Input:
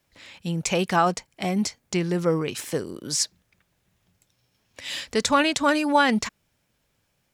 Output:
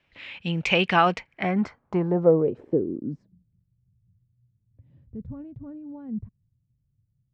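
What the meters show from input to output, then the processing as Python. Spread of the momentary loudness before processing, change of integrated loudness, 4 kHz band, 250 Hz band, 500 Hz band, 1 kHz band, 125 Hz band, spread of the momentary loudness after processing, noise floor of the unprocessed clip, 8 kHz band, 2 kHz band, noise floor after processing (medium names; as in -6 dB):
11 LU, -0.5 dB, -5.0 dB, -2.0 dB, +1.0 dB, -3.5 dB, +0.5 dB, 20 LU, -72 dBFS, under -20 dB, -2.0 dB, -73 dBFS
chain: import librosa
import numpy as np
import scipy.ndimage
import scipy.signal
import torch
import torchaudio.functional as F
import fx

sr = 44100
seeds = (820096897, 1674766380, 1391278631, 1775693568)

y = fx.filter_sweep_lowpass(x, sr, from_hz=2700.0, to_hz=120.0, start_s=1.12, end_s=3.69, q=2.8)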